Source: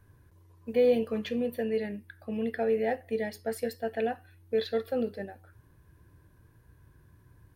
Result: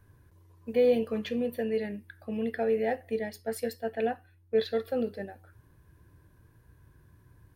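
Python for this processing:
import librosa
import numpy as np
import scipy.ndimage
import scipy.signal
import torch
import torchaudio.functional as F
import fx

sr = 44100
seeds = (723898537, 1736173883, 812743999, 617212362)

y = fx.band_widen(x, sr, depth_pct=70, at=(3.19, 4.62))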